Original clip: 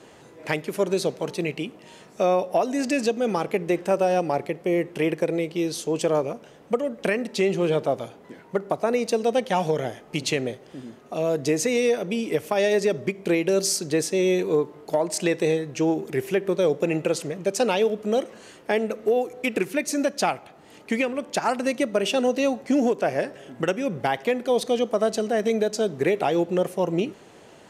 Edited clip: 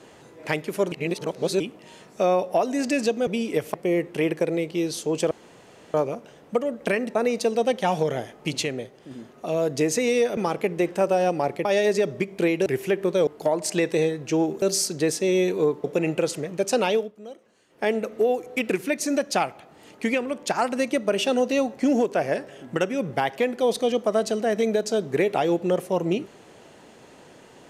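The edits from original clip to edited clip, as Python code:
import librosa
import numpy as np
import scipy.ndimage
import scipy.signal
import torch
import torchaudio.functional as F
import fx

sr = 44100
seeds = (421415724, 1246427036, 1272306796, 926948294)

y = fx.edit(x, sr, fx.reverse_span(start_s=0.92, length_s=0.68),
    fx.swap(start_s=3.27, length_s=1.28, other_s=12.05, other_length_s=0.47),
    fx.insert_room_tone(at_s=6.12, length_s=0.63),
    fx.cut(start_s=7.33, length_s=1.5),
    fx.clip_gain(start_s=10.31, length_s=0.48, db=-3.5),
    fx.swap(start_s=13.53, length_s=1.22, other_s=16.1, other_length_s=0.61),
    fx.fade_down_up(start_s=17.8, length_s=0.95, db=-17.5, fade_s=0.19), tone=tone)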